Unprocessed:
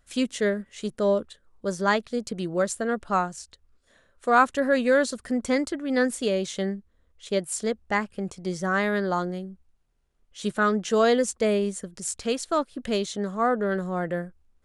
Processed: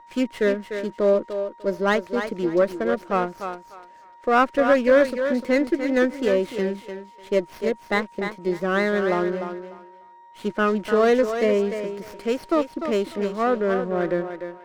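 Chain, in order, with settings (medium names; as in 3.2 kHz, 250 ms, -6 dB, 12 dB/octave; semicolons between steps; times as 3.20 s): on a send: thinning echo 298 ms, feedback 23%, high-pass 330 Hz, level -7 dB; on the sum: whistle 940 Hz -43 dBFS; cabinet simulation 150–5600 Hz, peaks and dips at 340 Hz +10 dB, 560 Hz +5 dB, 940 Hz -3 dB, 2.1 kHz +6 dB, 3.6 kHz -7 dB; sliding maximum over 5 samples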